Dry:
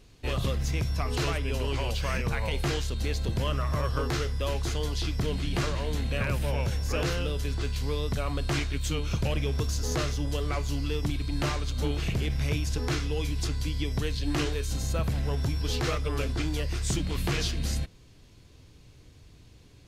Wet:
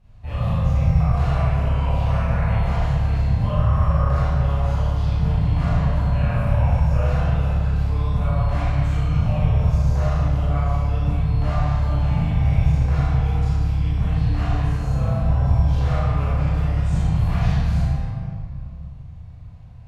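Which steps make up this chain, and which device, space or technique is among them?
tunnel (flutter echo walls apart 6.5 m, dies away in 0.42 s; reverb RT60 2.6 s, pre-delay 18 ms, DRR -10 dB); EQ curve 170 Hz 0 dB, 370 Hz -23 dB, 700 Hz -1 dB, 5000 Hz -21 dB

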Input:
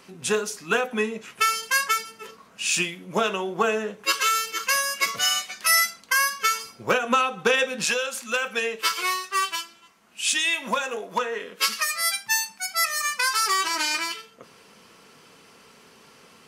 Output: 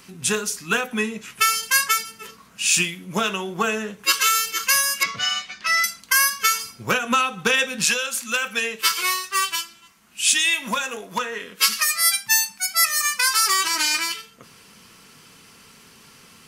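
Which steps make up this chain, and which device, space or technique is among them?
smiley-face EQ (low shelf 140 Hz +7 dB; bell 550 Hz -8 dB 1.7 oct; high shelf 8300 Hz +7.5 dB); 5.03–5.84 air absorption 160 m; gain +3.5 dB

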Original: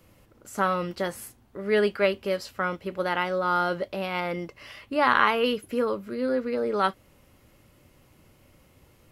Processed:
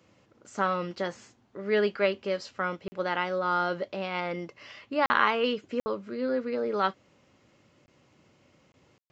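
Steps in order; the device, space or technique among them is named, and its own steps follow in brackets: call with lost packets (HPF 130 Hz 12 dB/oct; downsampling 16000 Hz; packet loss bursts); gain -2.5 dB

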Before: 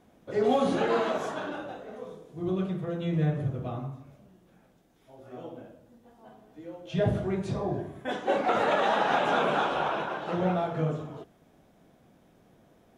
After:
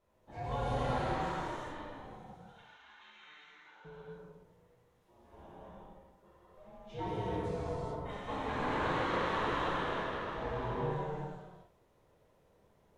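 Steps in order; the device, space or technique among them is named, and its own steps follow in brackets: 2.33–3.85 Chebyshev band-pass 1100–6400 Hz, order 3; alien voice (ring modulator 300 Hz; flange 0.59 Hz, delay 8.1 ms, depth 8.8 ms, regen -72%); non-linear reverb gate 0.46 s flat, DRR -8 dB; gain -9 dB

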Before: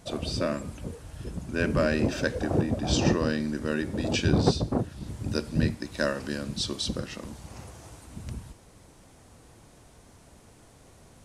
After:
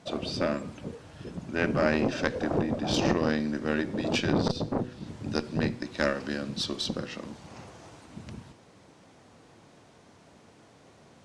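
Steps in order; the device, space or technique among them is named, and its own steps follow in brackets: valve radio (BPF 140–5200 Hz; tube stage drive 14 dB, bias 0.8; core saturation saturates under 660 Hz); de-hum 123.5 Hz, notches 4; gain +6 dB

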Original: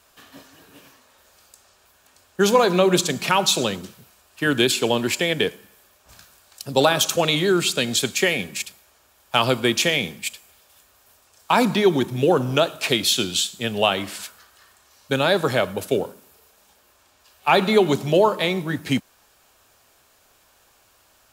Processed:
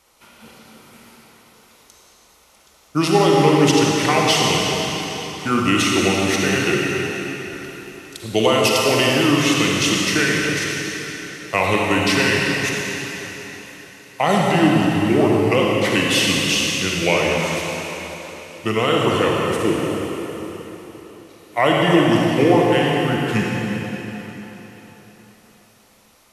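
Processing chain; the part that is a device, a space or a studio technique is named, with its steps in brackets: slowed and reverbed (varispeed -19%; reverb RT60 4.0 s, pre-delay 38 ms, DRR -3 dB); gain -1 dB

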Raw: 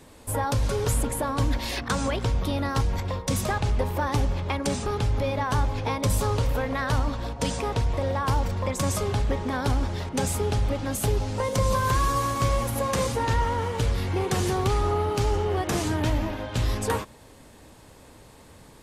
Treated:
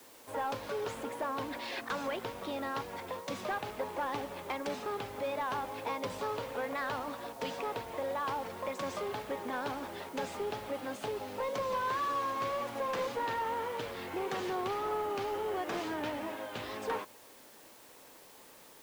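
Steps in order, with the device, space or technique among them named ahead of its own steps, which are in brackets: tape answering machine (BPF 350–3400 Hz; soft clip -21.5 dBFS, distortion -19 dB; wow and flutter; white noise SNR 21 dB); gain -5 dB

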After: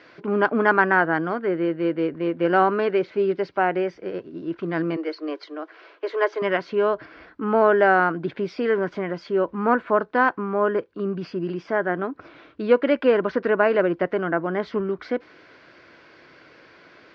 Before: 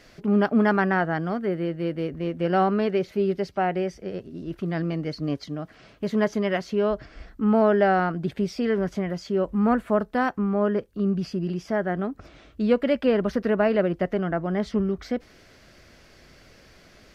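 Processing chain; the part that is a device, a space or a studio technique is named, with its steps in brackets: 4.96–6.42 steep high-pass 320 Hz 72 dB/oct; kitchen radio (speaker cabinet 160–4500 Hz, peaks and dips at 210 Hz -6 dB, 320 Hz +7 dB, 480 Hz +4 dB, 1000 Hz +9 dB, 1500 Hz +8 dB, 2300 Hz +4 dB)

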